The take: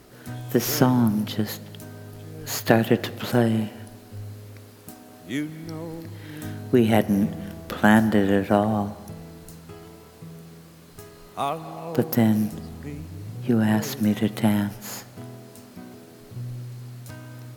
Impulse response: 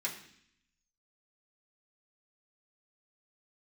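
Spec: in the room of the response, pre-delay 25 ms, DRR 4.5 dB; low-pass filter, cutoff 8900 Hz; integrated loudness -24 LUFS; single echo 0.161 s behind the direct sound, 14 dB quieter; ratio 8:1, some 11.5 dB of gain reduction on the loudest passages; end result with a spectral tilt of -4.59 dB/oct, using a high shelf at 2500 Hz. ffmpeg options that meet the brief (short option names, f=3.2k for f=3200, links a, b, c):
-filter_complex "[0:a]lowpass=8.9k,highshelf=f=2.5k:g=6.5,acompressor=threshold=-23dB:ratio=8,aecho=1:1:161:0.2,asplit=2[a][b];[1:a]atrim=start_sample=2205,adelay=25[c];[b][c]afir=irnorm=-1:irlink=0,volume=-7.5dB[d];[a][d]amix=inputs=2:normalize=0,volume=5.5dB"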